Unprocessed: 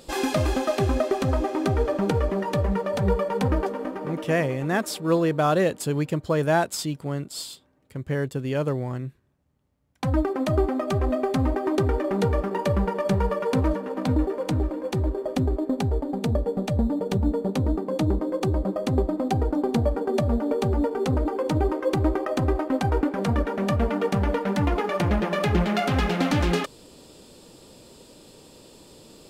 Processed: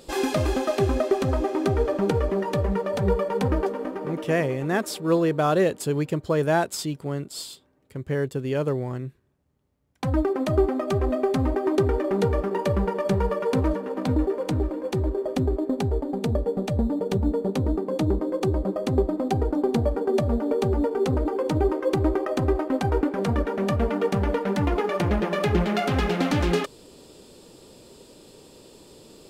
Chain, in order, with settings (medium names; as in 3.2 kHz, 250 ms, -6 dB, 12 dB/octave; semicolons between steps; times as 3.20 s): peaking EQ 400 Hz +4.5 dB 0.43 oct; trim -1 dB